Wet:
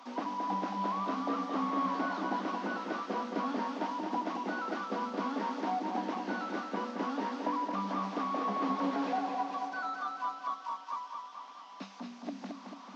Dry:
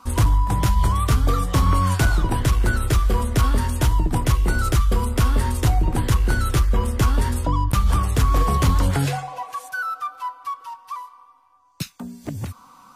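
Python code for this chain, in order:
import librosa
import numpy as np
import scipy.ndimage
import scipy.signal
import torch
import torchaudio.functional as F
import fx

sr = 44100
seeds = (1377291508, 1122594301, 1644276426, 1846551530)

y = fx.delta_mod(x, sr, bps=32000, step_db=-38.5)
y = scipy.signal.sosfilt(scipy.signal.cheby1(6, 9, 190.0, 'highpass', fs=sr, output='sos'), y)
y = fx.echo_feedback(y, sr, ms=221, feedback_pct=59, wet_db=-5.0)
y = y * librosa.db_to_amplitude(-3.5)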